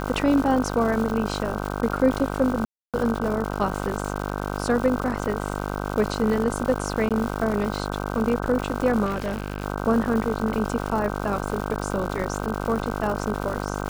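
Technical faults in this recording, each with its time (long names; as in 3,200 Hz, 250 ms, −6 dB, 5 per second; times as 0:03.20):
mains buzz 50 Hz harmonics 31 −29 dBFS
surface crackle 280 per second −29 dBFS
0:02.65–0:02.94: drop-out 287 ms
0:07.09–0:07.11: drop-out 17 ms
0:09.05–0:09.64: clipping −22 dBFS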